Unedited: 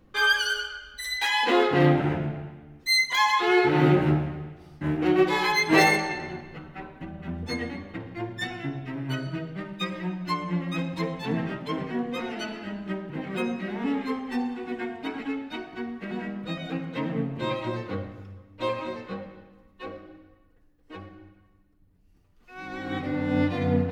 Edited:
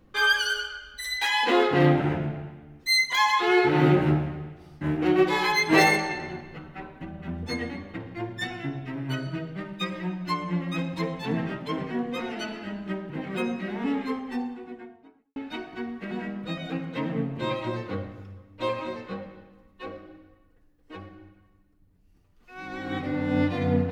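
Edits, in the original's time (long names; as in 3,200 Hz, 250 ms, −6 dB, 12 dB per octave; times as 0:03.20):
0:13.95–0:15.36: fade out and dull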